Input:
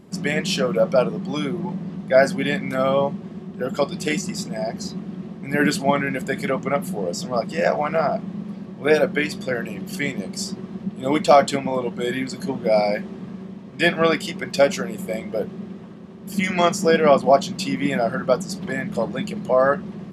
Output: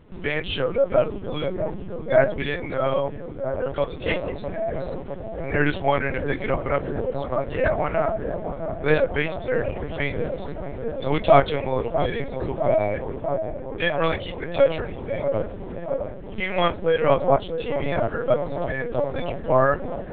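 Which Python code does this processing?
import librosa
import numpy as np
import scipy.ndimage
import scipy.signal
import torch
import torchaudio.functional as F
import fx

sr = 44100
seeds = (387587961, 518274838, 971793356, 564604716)

p1 = fx.peak_eq(x, sr, hz=190.0, db=-7.0, octaves=0.48)
p2 = fx.rider(p1, sr, range_db=4, speed_s=2.0)
p3 = p2 + fx.echo_wet_lowpass(p2, sr, ms=651, feedback_pct=80, hz=850.0, wet_db=-7.5, dry=0)
p4 = fx.lpc_vocoder(p3, sr, seeds[0], excitation='pitch_kept', order=10)
y = p4 * librosa.db_to_amplitude(-3.0)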